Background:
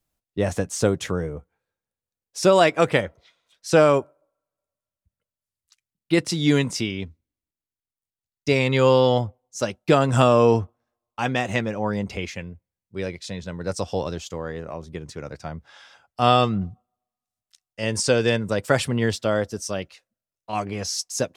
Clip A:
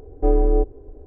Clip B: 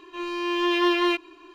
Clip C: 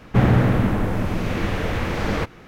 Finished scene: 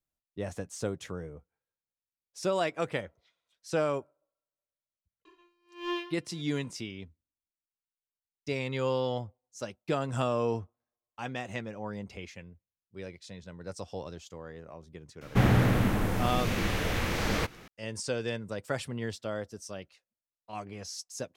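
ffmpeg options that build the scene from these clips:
-filter_complex "[0:a]volume=-13dB[a];[2:a]aeval=exprs='val(0)*pow(10,-36*(0.5-0.5*cos(2*PI*1.5*n/s))/20)':c=same[b];[3:a]highshelf=f=3.2k:g=12[c];[b]atrim=end=1.54,asetpts=PTS-STARTPTS,volume=-8.5dB,afade=t=in:d=0.004:c=hsin,afade=t=out:st=1.536:d=0.004:c=hsin,adelay=231525S[d];[c]atrim=end=2.47,asetpts=PTS-STARTPTS,volume=-7dB,afade=t=in:d=0.004:c=hsin,afade=t=out:st=2.466:d=0.004:c=hsin,adelay=15210[e];[a][d][e]amix=inputs=3:normalize=0"

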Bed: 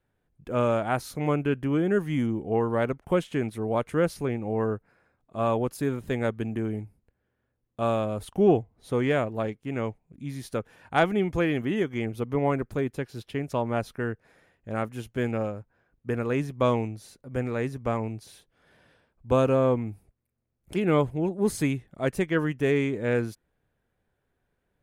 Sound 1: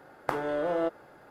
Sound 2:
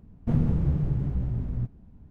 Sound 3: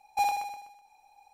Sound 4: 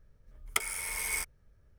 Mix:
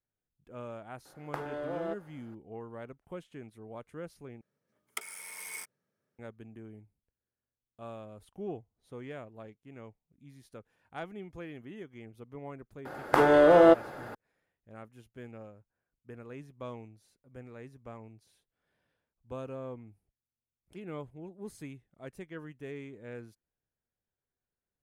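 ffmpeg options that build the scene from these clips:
-filter_complex "[1:a]asplit=2[a][b];[0:a]volume=-18.5dB[c];[4:a]highpass=f=170:w=0.5412,highpass=f=170:w=1.3066[d];[b]alimiter=level_in=15.5dB:limit=-1dB:release=50:level=0:latency=1[e];[c]asplit=2[f][g];[f]atrim=end=4.414[h];[d]atrim=end=1.78,asetpts=PTS-STARTPTS,volume=-8.5dB[i];[g]atrim=start=6.186[j];[a]atrim=end=1.3,asetpts=PTS-STARTPTS,volume=-7.5dB,afade=t=in:d=0.004:c=hsin,afade=t=out:st=1.296:d=0.004:c=hsin,adelay=1050[k];[e]atrim=end=1.3,asetpts=PTS-STARTPTS,volume=-5dB,afade=t=in:d=0.004:c=hsin,afade=t=out:st=1.296:d=0.004:c=hsin,adelay=12850[l];[h][i]acrossfade=d=0.004:c1=hsin:c2=hsin[m];[m][j]acrossfade=d=0.004:c1=hsin:c2=hsin[n];[n][k][l]amix=inputs=3:normalize=0"

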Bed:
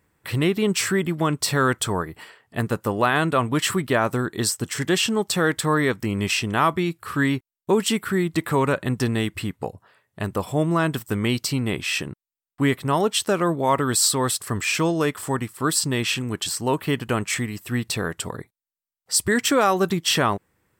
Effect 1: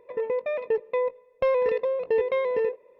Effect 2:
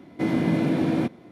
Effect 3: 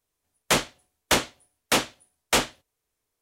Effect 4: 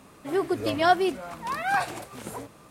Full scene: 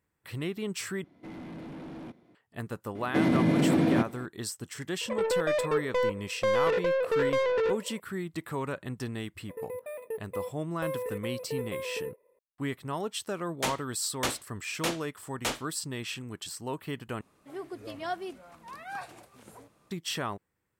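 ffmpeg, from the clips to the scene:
-filter_complex "[2:a]asplit=2[a][b];[1:a]asplit=2[c][d];[0:a]volume=-13dB[e];[a]asoftclip=type=tanh:threshold=-26.5dB[f];[b]alimiter=level_in=17.5dB:limit=-1dB:release=50:level=0:latency=1[g];[c]asplit=2[h][i];[i]highpass=f=720:p=1,volume=23dB,asoftclip=type=tanh:threshold=-14.5dB[j];[h][j]amix=inputs=2:normalize=0,lowpass=f=3.4k:p=1,volume=-6dB[k];[d]acrusher=samples=4:mix=1:aa=0.000001[l];[3:a]agate=range=-33dB:threshold=-50dB:ratio=3:release=100:detection=peak[m];[e]asplit=3[n][o][p];[n]atrim=end=1.044[q];[f]atrim=end=1.31,asetpts=PTS-STARTPTS,volume=-13dB[r];[o]atrim=start=2.346:end=17.214[s];[4:a]atrim=end=2.7,asetpts=PTS-STARTPTS,volume=-14dB[t];[p]atrim=start=19.906[u];[g]atrim=end=1.31,asetpts=PTS-STARTPTS,volume=-15dB,afade=t=in:d=0.004:c=hsin,afade=t=out:st=1.306:d=0.004:c=hsin,adelay=2950[v];[k]atrim=end=2.99,asetpts=PTS-STARTPTS,volume=-6dB,afade=t=in:d=0.004:c=hsin,afade=t=out:st=2.986:d=0.004:c=hsin,adelay=220941S[w];[l]atrim=end=2.99,asetpts=PTS-STARTPTS,volume=-11.5dB,afade=t=in:d=0.004:c=hsin,afade=t=out:st=2.986:d=0.004:c=hsin,adelay=9400[x];[m]atrim=end=3.21,asetpts=PTS-STARTPTS,volume=-10dB,afade=t=in:d=0.004:c=hsin,afade=t=out:st=3.206:d=0.004:c=hsin,adelay=13120[y];[q][r]acrossfade=d=0.004:c1=hsin:c2=hsin[z];[z][s]acrossfade=d=0.004:c1=hsin:c2=hsin[aa];[aa][t]acrossfade=d=0.004:c1=hsin:c2=hsin[ab];[ab][u]acrossfade=d=0.004:c1=hsin:c2=hsin[ac];[ac][v][w][x][y]amix=inputs=5:normalize=0"

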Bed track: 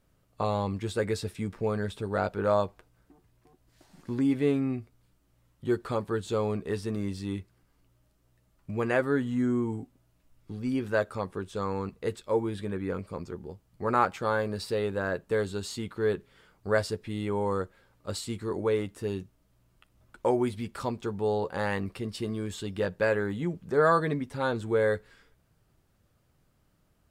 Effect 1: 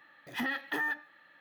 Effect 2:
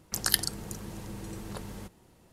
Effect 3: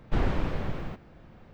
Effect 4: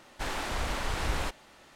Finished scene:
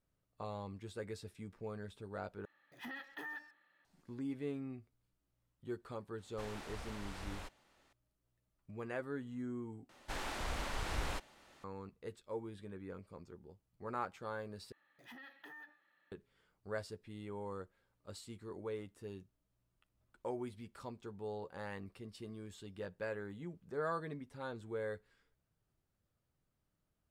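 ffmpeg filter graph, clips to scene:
-filter_complex "[1:a]asplit=2[a][b];[4:a]asplit=2[c][d];[0:a]volume=-15.5dB[e];[a]asplit=2[f][g];[g]adelay=130,highpass=300,lowpass=3.4k,asoftclip=type=hard:threshold=-34dB,volume=-14dB[h];[f][h]amix=inputs=2:normalize=0[i];[b]acompressor=threshold=-35dB:ratio=6:attack=3.2:release=140:knee=1:detection=peak[j];[e]asplit=4[k][l][m][n];[k]atrim=end=2.454[o];[i]atrim=end=1.4,asetpts=PTS-STARTPTS,volume=-13.5dB[p];[l]atrim=start=3.846:end=9.894[q];[d]atrim=end=1.75,asetpts=PTS-STARTPTS,volume=-7.5dB[r];[m]atrim=start=11.636:end=14.724[s];[j]atrim=end=1.4,asetpts=PTS-STARTPTS,volume=-15dB[t];[n]atrim=start=16.116[u];[c]atrim=end=1.75,asetpts=PTS-STARTPTS,volume=-15.5dB,afade=t=in:d=0.004:c=hsin,afade=t=out:st=1.746:d=0.004:c=hsin,adelay=272538S[v];[o][p]acrossfade=d=0.004:c1=hsin:c2=hsin[w];[w][q]acrossfade=d=0.004:c1=hsin:c2=hsin[x];[x][r]acrossfade=d=0.004:c1=hsin:c2=hsin[y];[y][s]acrossfade=d=0.004:c1=hsin:c2=hsin[z];[z][t]acrossfade=d=0.004:c1=hsin:c2=hsin[aa];[aa][u]acrossfade=d=0.004:c1=hsin:c2=hsin[ab];[ab][v]amix=inputs=2:normalize=0"

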